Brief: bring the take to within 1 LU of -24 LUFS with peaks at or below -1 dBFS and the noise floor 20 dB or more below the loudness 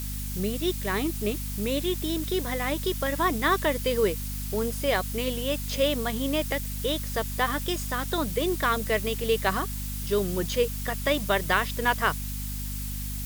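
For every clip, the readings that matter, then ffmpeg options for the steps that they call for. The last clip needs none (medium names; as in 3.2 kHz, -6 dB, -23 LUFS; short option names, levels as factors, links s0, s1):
hum 50 Hz; highest harmonic 250 Hz; hum level -31 dBFS; noise floor -33 dBFS; noise floor target -48 dBFS; loudness -27.5 LUFS; peak level -7.5 dBFS; loudness target -24.0 LUFS
-> -af "bandreject=f=50:t=h:w=4,bandreject=f=100:t=h:w=4,bandreject=f=150:t=h:w=4,bandreject=f=200:t=h:w=4,bandreject=f=250:t=h:w=4"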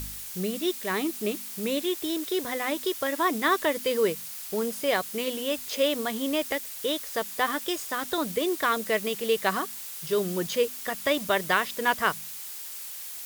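hum not found; noise floor -39 dBFS; noise floor target -48 dBFS
-> -af "afftdn=nr=9:nf=-39"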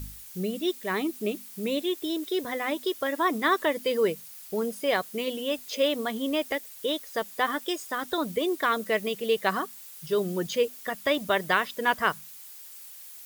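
noise floor -46 dBFS; noise floor target -48 dBFS
-> -af "afftdn=nr=6:nf=-46"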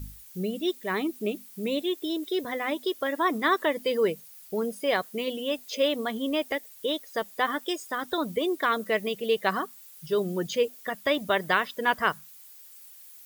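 noise floor -50 dBFS; loudness -28.5 LUFS; peak level -8.5 dBFS; loudness target -24.0 LUFS
-> -af "volume=1.68"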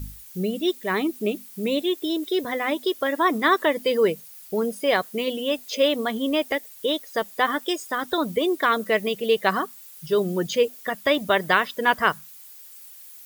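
loudness -24.0 LUFS; peak level -4.0 dBFS; noise floor -45 dBFS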